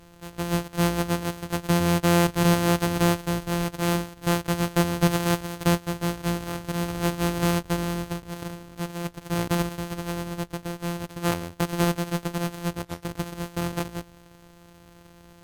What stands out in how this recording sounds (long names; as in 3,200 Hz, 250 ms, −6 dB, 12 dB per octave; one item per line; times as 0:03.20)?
a buzz of ramps at a fixed pitch in blocks of 256 samples
Ogg Vorbis